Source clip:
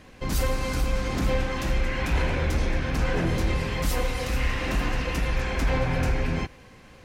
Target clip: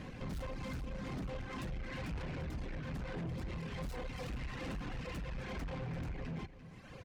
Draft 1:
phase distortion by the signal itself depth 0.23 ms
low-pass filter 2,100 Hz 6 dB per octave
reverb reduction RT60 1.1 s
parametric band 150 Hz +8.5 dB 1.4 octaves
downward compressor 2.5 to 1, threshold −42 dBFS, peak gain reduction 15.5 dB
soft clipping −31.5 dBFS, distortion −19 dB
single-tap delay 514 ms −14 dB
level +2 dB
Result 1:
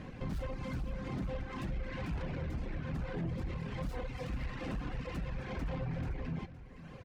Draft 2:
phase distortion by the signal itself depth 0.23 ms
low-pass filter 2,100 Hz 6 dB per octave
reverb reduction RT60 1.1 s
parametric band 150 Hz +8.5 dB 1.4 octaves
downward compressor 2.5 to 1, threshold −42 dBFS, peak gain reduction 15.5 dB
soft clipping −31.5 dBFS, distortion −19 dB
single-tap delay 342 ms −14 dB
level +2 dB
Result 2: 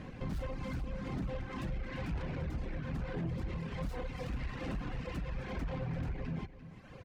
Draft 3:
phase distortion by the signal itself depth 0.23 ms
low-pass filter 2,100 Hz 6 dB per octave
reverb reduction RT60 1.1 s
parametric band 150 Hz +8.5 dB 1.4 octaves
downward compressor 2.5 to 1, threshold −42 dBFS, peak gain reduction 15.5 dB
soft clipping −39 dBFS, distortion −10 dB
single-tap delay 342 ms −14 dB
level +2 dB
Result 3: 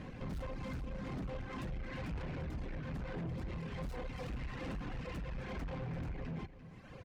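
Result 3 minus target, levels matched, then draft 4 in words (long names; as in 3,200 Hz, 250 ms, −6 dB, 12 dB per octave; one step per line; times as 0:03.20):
4,000 Hz band −3.0 dB
phase distortion by the signal itself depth 0.23 ms
low-pass filter 4,600 Hz 6 dB per octave
reverb reduction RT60 1.1 s
parametric band 150 Hz +8.5 dB 1.4 octaves
downward compressor 2.5 to 1, threshold −42 dBFS, peak gain reduction 15.5 dB
soft clipping −39 dBFS, distortion −10 dB
single-tap delay 342 ms −14 dB
level +2 dB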